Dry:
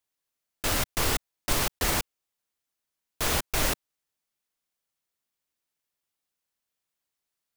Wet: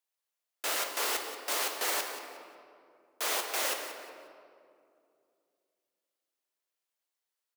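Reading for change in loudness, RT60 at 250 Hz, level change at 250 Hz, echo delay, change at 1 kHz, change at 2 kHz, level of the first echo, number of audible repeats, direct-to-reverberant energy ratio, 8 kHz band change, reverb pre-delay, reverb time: -4.0 dB, 3.1 s, -13.0 dB, 180 ms, -2.5 dB, -3.0 dB, -12.5 dB, 2, 3.0 dB, -3.5 dB, 8 ms, 2.5 s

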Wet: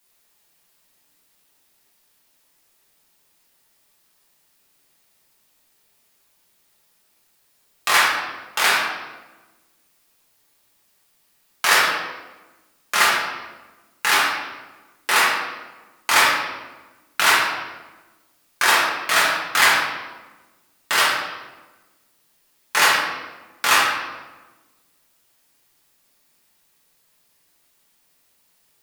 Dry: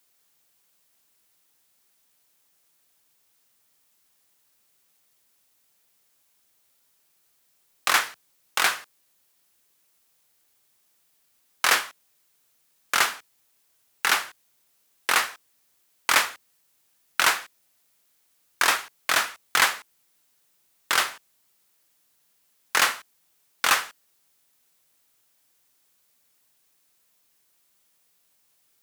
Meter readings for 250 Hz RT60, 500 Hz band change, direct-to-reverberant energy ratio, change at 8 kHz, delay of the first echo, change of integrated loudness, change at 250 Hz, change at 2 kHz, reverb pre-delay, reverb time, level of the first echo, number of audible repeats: 1.6 s, +7.5 dB, -7.0 dB, +3.5 dB, no echo, +5.0 dB, +8.0 dB, +6.5 dB, 4 ms, 1.2 s, no echo, no echo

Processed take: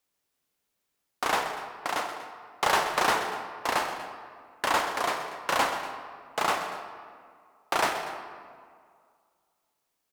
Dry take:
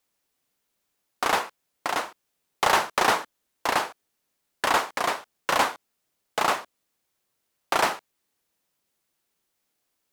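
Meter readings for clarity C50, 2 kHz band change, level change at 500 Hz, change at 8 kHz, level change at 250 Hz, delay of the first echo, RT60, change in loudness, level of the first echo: 5.5 dB, -2.5 dB, -2.0 dB, -3.0 dB, -2.0 dB, 129 ms, 2.1 s, -3.0 dB, -12.5 dB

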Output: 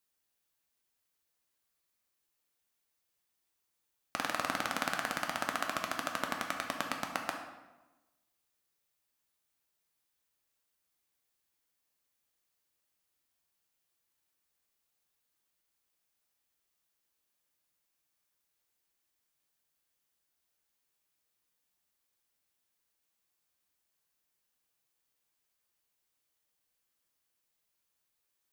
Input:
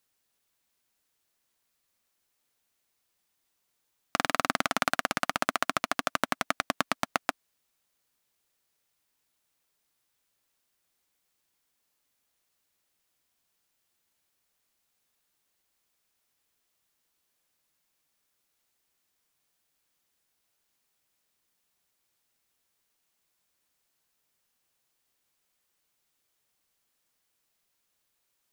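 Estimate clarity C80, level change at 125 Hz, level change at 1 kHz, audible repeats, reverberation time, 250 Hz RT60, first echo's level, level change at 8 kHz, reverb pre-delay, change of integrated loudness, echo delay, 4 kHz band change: 8.0 dB, -6.0 dB, -6.0 dB, no echo, 1.1 s, 1.3 s, no echo, -5.5 dB, 4 ms, -6.0 dB, no echo, -5.5 dB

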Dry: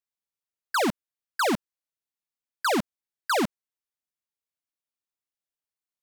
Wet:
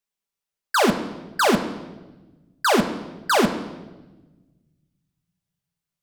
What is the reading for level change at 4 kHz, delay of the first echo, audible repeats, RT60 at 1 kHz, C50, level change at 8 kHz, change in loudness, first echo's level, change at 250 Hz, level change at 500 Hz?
+6.0 dB, no echo, no echo, 1.0 s, 9.5 dB, +5.5 dB, +5.0 dB, no echo, +7.0 dB, +7.0 dB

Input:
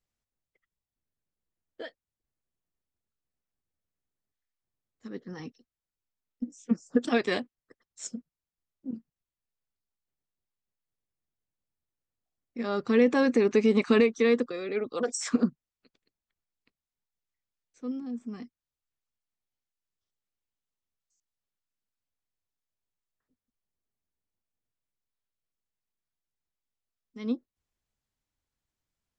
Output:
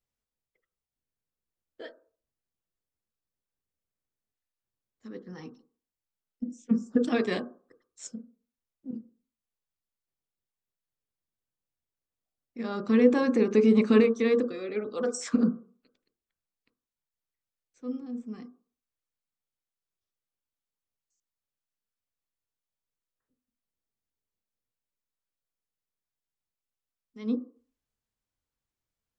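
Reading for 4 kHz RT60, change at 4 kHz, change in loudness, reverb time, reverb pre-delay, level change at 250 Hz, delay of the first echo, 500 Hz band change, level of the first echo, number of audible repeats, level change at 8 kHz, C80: 0.35 s, -3.5 dB, +1.0 dB, 0.45 s, 13 ms, +2.0 dB, no echo, 0.0 dB, no echo, no echo, -3.5 dB, 19.5 dB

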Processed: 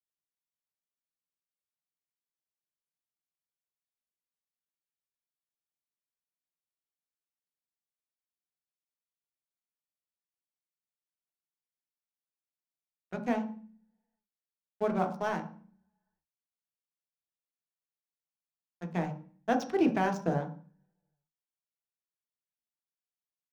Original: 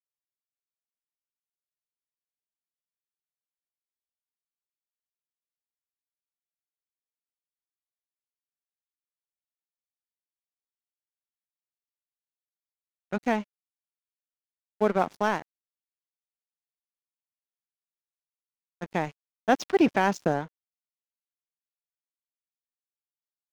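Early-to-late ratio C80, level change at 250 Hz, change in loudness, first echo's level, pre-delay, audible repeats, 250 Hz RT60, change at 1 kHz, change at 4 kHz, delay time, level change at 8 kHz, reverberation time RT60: 15.0 dB, -3.0 dB, -5.0 dB, no echo, 3 ms, no echo, 0.80 s, -5.5 dB, -8.0 dB, no echo, no reading, 0.45 s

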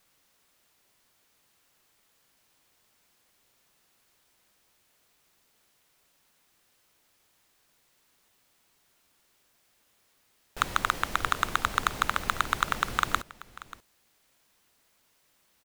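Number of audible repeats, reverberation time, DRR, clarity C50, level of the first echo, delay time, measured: 1, no reverb, no reverb, no reverb, -18.5 dB, 586 ms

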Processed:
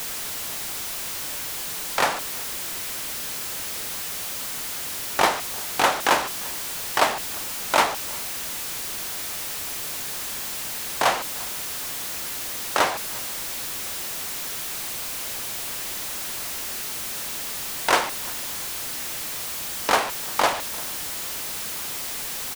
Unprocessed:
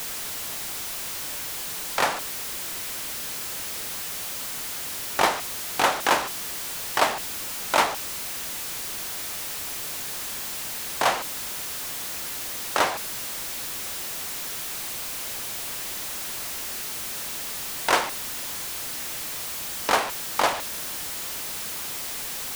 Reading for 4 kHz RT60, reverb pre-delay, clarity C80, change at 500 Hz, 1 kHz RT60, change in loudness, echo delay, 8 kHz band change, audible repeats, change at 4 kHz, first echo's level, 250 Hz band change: no reverb, no reverb, no reverb, +1.5 dB, no reverb, +1.5 dB, 347 ms, +1.5 dB, 1, +1.5 dB, -23.0 dB, +1.5 dB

